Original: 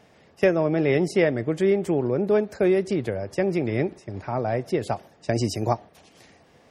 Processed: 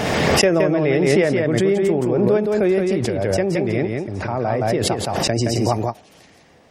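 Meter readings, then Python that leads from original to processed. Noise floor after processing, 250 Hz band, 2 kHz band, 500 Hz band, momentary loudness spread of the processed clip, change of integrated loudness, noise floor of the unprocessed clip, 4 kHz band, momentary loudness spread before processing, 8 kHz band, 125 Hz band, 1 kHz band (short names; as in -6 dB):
-50 dBFS, +5.5 dB, +7.0 dB, +5.0 dB, 7 LU, +5.5 dB, -57 dBFS, +13.5 dB, 8 LU, n/a, +6.0 dB, +6.5 dB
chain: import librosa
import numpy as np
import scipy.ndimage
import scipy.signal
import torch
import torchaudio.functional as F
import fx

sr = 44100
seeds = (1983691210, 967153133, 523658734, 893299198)

y = x + 10.0 ** (-4.0 / 20.0) * np.pad(x, (int(170 * sr / 1000.0), 0))[:len(x)]
y = fx.pre_swell(y, sr, db_per_s=21.0)
y = y * 10.0 ** (2.0 / 20.0)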